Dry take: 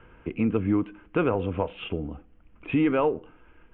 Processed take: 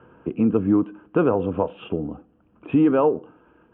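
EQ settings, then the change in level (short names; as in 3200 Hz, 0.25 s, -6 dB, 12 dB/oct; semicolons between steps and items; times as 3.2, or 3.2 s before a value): HPF 140 Hz 12 dB/oct; air absorption 430 m; bell 2100 Hz -15 dB 0.45 oct; +6.5 dB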